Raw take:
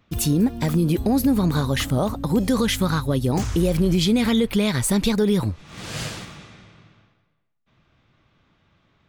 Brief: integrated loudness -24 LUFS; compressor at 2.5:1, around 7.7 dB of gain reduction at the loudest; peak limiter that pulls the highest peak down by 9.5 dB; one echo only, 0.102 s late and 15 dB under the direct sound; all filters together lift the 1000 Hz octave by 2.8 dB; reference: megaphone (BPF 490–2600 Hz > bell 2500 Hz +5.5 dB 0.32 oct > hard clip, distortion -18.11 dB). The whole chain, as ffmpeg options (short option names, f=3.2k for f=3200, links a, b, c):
-af "equalizer=f=1k:t=o:g=4,acompressor=threshold=-27dB:ratio=2.5,alimiter=level_in=0.5dB:limit=-24dB:level=0:latency=1,volume=-0.5dB,highpass=490,lowpass=2.6k,equalizer=f=2.5k:t=o:w=0.32:g=5.5,aecho=1:1:102:0.178,asoftclip=type=hard:threshold=-33dB,volume=17dB"